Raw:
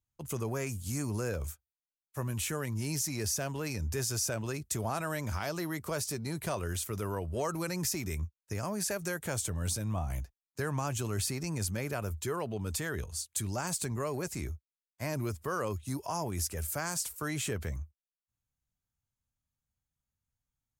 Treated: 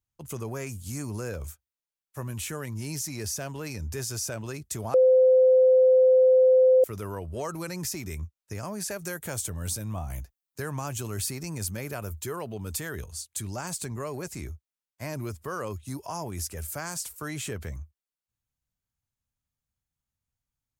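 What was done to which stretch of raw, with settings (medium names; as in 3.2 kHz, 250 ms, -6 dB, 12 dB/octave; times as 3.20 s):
4.94–6.84 s: bleep 515 Hz -14.5 dBFS
9.02–13.12 s: treble shelf 12 kHz +10.5 dB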